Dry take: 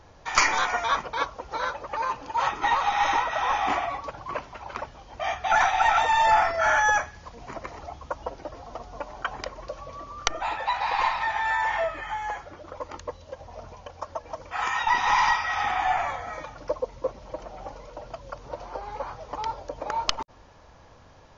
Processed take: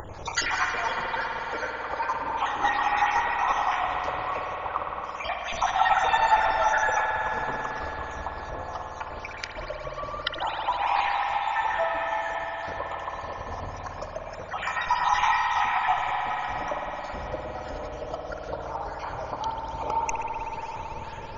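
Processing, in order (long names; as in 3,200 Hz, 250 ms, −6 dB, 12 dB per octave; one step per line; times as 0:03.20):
time-frequency cells dropped at random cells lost 59%
0:04.57–0:05.04: high shelf with overshoot 1,900 Hz −13.5 dB, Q 3
upward compression, threshold −29 dBFS
convolution reverb RT60 5.5 s, pre-delay 54 ms, DRR −0.5 dB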